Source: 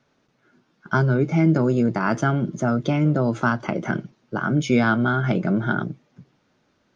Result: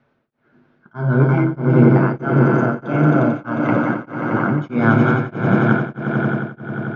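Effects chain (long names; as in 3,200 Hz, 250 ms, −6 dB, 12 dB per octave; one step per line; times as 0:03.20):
low-pass filter 2,300 Hz 12 dB per octave
echo that builds up and dies away 89 ms, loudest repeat 5, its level −8.5 dB
on a send at −6 dB: convolution reverb RT60 0.80 s, pre-delay 9 ms
on the sum: tremolo along a rectified sine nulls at 1.6 Hz
level +3 dB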